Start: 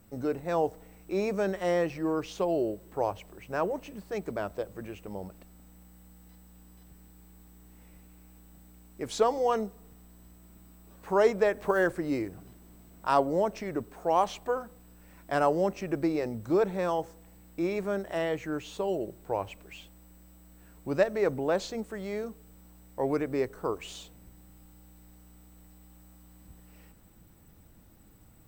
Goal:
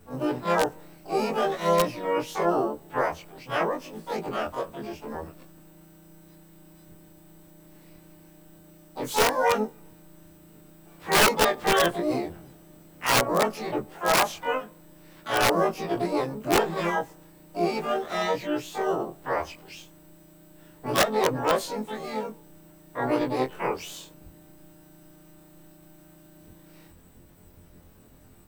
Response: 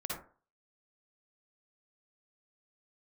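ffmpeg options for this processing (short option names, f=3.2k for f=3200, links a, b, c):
-filter_complex "[0:a]afftfilt=real='re':imag='-im':win_size=2048:overlap=0.75,aeval=exprs='(mod(10.6*val(0)+1,2)-1)/10.6':c=same,asplit=3[a][b][c];[b]asetrate=52444,aresample=44100,atempo=0.840896,volume=-8dB[d];[c]asetrate=88200,aresample=44100,atempo=0.5,volume=-3dB[e];[a][d][e]amix=inputs=3:normalize=0,volume=6dB"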